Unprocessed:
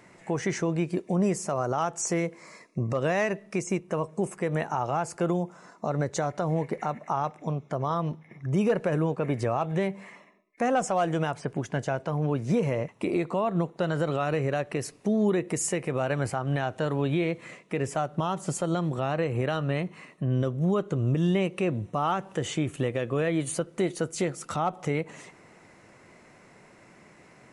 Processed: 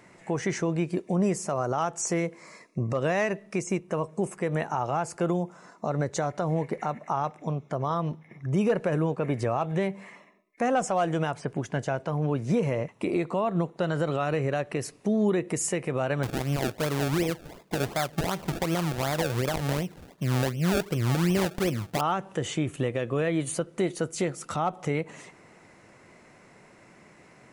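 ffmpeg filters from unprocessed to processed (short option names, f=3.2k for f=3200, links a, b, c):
-filter_complex "[0:a]asettb=1/sr,asplit=3[a][b][c];[a]atrim=end=16.234[d];[b]atrim=start=16.23:end=22.01,asetpts=PTS-STARTPTS,afade=t=in:d=0.004:c=qsin,afade=t=out:st=5.776:d=0.004:c=qsin,acrusher=samples=30:mix=1:aa=0.000001:lfo=1:lforange=30:lforate=2.7[e];[c]atrim=start=22.006[f];[d][e]acrossfade=d=0.004:c1=hsin:c2=qsin[g];[g][f]acrossfade=d=0.004:c1=qsin:c2=hsin"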